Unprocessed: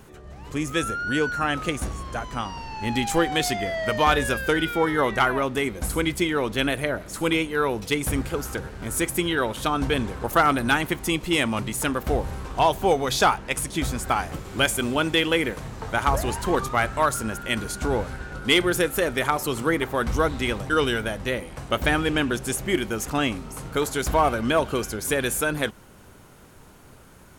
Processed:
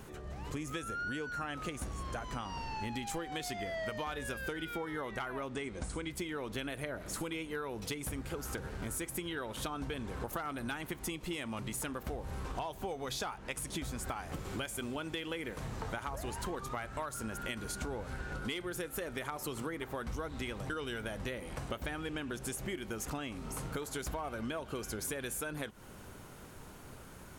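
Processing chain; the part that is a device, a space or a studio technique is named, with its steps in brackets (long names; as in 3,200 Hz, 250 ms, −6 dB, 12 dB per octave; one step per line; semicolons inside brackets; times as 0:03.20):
serial compression, peaks first (downward compressor, threshold −30 dBFS, peak gain reduction 15 dB; downward compressor 2 to 1, threshold −37 dBFS, peak gain reduction 6 dB)
0:05.49–0:06.11: Butterworth low-pass 9,600 Hz 96 dB per octave
level −1.5 dB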